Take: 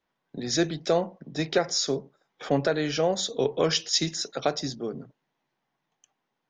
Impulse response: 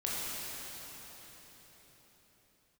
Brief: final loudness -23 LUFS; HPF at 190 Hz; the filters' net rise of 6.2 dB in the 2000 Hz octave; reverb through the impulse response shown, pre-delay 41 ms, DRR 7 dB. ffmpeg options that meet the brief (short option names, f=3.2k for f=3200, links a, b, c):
-filter_complex "[0:a]highpass=190,equalizer=f=2k:t=o:g=8,asplit=2[a][b];[1:a]atrim=start_sample=2205,adelay=41[c];[b][c]afir=irnorm=-1:irlink=0,volume=-13.5dB[d];[a][d]amix=inputs=2:normalize=0,volume=2.5dB"